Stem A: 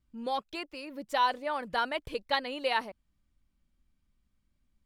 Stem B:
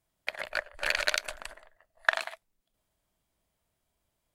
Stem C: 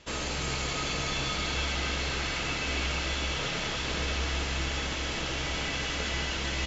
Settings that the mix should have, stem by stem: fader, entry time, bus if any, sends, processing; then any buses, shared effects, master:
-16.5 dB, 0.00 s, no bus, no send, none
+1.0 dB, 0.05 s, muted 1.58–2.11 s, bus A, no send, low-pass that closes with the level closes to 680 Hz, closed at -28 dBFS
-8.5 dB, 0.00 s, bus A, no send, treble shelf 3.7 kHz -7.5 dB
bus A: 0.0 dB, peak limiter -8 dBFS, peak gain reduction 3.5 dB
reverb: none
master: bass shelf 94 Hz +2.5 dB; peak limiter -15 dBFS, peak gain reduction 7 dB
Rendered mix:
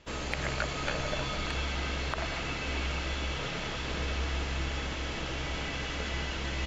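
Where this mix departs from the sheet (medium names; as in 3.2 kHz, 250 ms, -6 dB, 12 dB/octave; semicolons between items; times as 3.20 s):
stem A -16.5 dB -> -22.5 dB; stem C -8.5 dB -> -2.0 dB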